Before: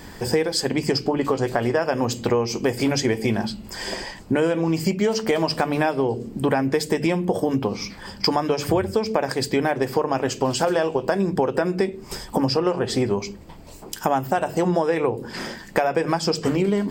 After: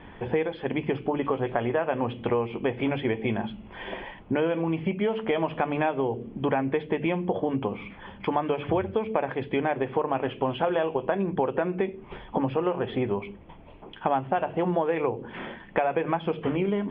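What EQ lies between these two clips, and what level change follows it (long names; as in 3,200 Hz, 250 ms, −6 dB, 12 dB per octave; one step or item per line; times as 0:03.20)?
Chebyshev low-pass with heavy ripple 3,400 Hz, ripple 3 dB
−3.0 dB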